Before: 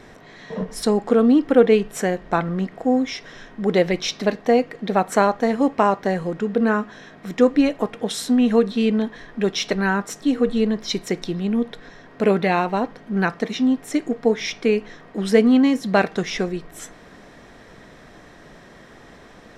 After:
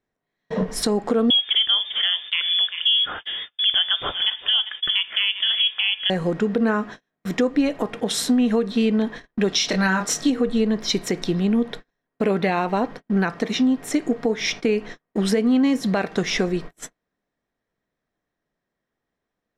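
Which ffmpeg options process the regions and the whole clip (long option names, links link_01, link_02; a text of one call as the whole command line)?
ffmpeg -i in.wav -filter_complex "[0:a]asettb=1/sr,asplit=3[link_01][link_02][link_03];[link_01]atrim=end=1.304[link_04];[link_02]atrim=start=1.3:end=6.1,asetpts=PTS-STARTPTS,afade=type=in:duration=0.004:curve=qsin,afade=type=out:start_time=4.796:duration=0.004:curve=qsin,aecho=1:1:393:0.133,atrim=end_sample=211680,lowpass=frequency=3100:width_type=q:width=0.5098,lowpass=frequency=3100:width_type=q:width=0.6013,lowpass=frequency=3100:width_type=q:width=0.9,lowpass=frequency=3100:width_type=q:width=2.563,afreqshift=-3600[link_05];[link_03]atrim=start=6.096[link_06];[link_04][link_05]acrossfade=duration=0.004:curve1=hsin:curve2=qsin[link_07];[link_07][link_06]acrossfade=duration=0.004:curve1=qsin:curve2=hsin,asettb=1/sr,asplit=3[link_08][link_09][link_10];[link_08]atrim=end=9.494[link_11];[link_09]atrim=start=9.49:end=10.3,asetpts=PTS-STARTPTS,afade=type=in:duration=0.004:curve=qsin,afade=type=out:start_time=0.806:duration=0.004:curve=qsin,equalizer=frequency=5100:width=0.72:gain=7.5,bandreject=frequency=400:width=13,asplit=2[link_12][link_13];[link_13]adelay=27,volume=-5.5dB[link_14];[link_12][link_14]amix=inputs=2:normalize=0,atrim=end_sample=35721[link_15];[link_10]atrim=start=10.296[link_16];[link_11][link_15]acrossfade=duration=0.004:curve1=hsin:curve2=qsin[link_17];[link_17][link_16]acrossfade=duration=0.004:curve1=qsin:curve2=hsin,agate=range=-41dB:threshold=-35dB:ratio=16:detection=peak,acompressor=threshold=-21dB:ratio=4,alimiter=level_in=13.5dB:limit=-1dB:release=50:level=0:latency=1,volume=-9dB" out.wav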